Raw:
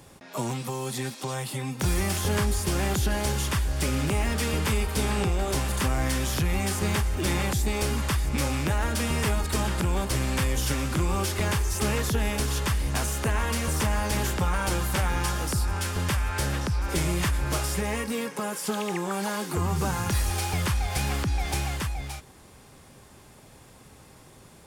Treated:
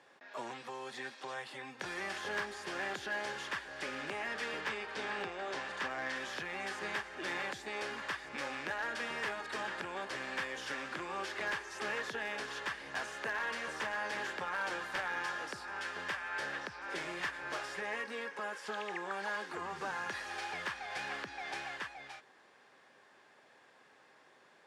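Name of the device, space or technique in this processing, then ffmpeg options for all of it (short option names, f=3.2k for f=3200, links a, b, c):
megaphone: -filter_complex "[0:a]asettb=1/sr,asplit=3[a][b][c];[a]atrim=end=4.614[d];[b]atrim=start=4.61:end=6.16,asetpts=PTS-STARTPTS,afade=t=in:d=0.004:c=qsin,afade=t=out:st=1.546:d=0.004:c=qsin,lowpass=7.5k[e];[c]atrim=start=6.156[f];[d][e]acrossfade=d=0.004:c1=hsin:c2=qsin[g];[g][f]acrossfade=d=0.004:c1=qsin:c2=hsin,highpass=460,lowpass=3.9k,equalizer=f=1.7k:t=o:w=0.29:g=9.5,asoftclip=type=hard:threshold=-21.5dB,volume=-8dB"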